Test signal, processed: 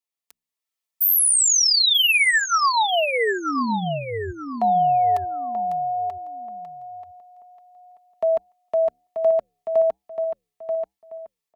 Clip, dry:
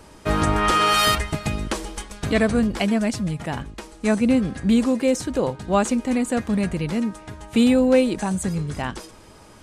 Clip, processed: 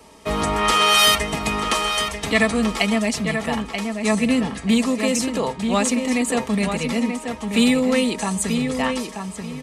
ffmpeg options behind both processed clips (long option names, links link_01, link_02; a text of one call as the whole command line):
ffmpeg -i in.wav -filter_complex "[0:a]highpass=41,aecho=1:1:4.5:0.49,acrossover=split=310|890[link_01][link_02][link_03];[link_01]flanger=delay=7.6:depth=7.9:regen=-81:speed=1.3:shape=sinusoidal[link_04];[link_02]alimiter=limit=-20dB:level=0:latency=1[link_05];[link_03]dynaudnorm=framelen=370:gausssize=3:maxgain=6dB[link_06];[link_04][link_05][link_06]amix=inputs=3:normalize=0,asuperstop=centerf=1500:order=4:qfactor=6.2,asplit=2[link_07][link_08];[link_08]adelay=934,lowpass=frequency=3200:poles=1,volume=-6dB,asplit=2[link_09][link_10];[link_10]adelay=934,lowpass=frequency=3200:poles=1,volume=0.27,asplit=2[link_11][link_12];[link_12]adelay=934,lowpass=frequency=3200:poles=1,volume=0.27[link_13];[link_09][link_11][link_13]amix=inputs=3:normalize=0[link_14];[link_07][link_14]amix=inputs=2:normalize=0" out.wav